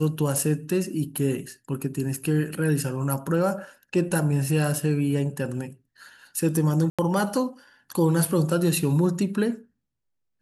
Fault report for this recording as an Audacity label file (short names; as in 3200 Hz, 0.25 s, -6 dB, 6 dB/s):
6.900000	6.990000	gap 86 ms